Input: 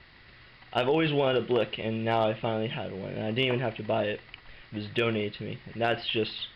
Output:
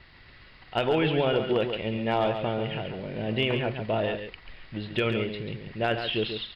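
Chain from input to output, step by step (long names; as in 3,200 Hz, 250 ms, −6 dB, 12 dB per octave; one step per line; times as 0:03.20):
low-shelf EQ 76 Hz +5.5 dB
single-tap delay 138 ms −7.5 dB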